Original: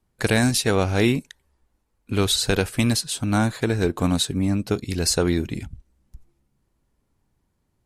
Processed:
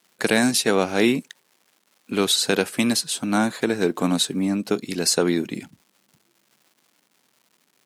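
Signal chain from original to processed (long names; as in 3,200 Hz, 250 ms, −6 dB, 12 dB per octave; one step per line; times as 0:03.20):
surface crackle 370 per second −48 dBFS
high-pass filter 180 Hz 24 dB per octave
level +1.5 dB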